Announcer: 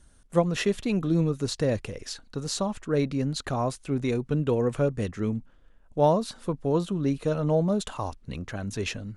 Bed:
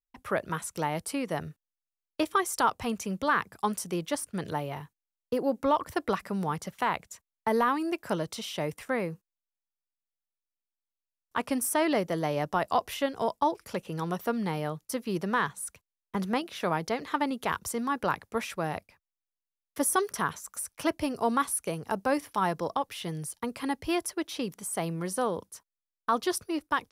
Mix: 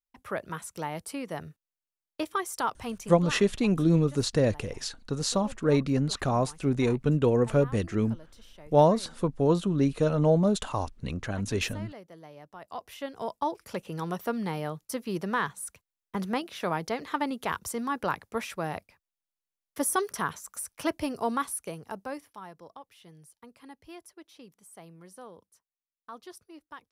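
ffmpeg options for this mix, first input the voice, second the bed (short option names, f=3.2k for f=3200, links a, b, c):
-filter_complex "[0:a]adelay=2750,volume=1.5dB[a];[1:a]volume=14dB,afade=t=out:st=2.92:d=0.5:silence=0.177828,afade=t=in:st=12.57:d=1.23:silence=0.125893,afade=t=out:st=21.1:d=1.33:silence=0.149624[b];[a][b]amix=inputs=2:normalize=0"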